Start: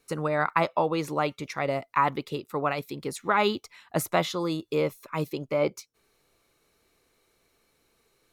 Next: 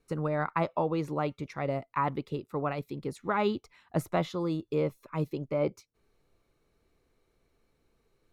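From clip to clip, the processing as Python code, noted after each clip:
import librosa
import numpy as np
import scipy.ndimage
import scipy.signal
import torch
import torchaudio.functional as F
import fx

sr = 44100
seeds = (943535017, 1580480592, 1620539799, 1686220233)

y = fx.tilt_eq(x, sr, slope=-2.5)
y = y * librosa.db_to_amplitude(-6.0)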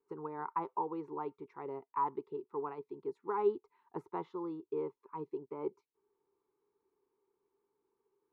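y = fx.double_bandpass(x, sr, hz=610.0, octaves=1.2)
y = y * librosa.db_to_amplitude(1.0)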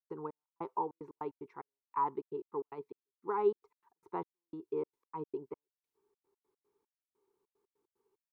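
y = fx.step_gate(x, sr, bpm=149, pattern='.xx...xxx.x.x', floor_db=-60.0, edge_ms=4.5)
y = y * librosa.db_to_amplitude(1.0)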